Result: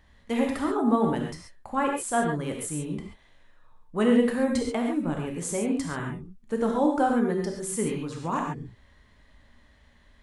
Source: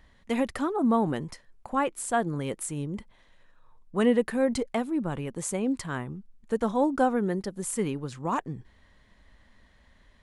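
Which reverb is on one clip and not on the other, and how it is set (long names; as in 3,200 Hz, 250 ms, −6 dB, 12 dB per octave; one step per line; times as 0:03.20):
reverb whose tail is shaped and stops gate 160 ms flat, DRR 0 dB
level −1.5 dB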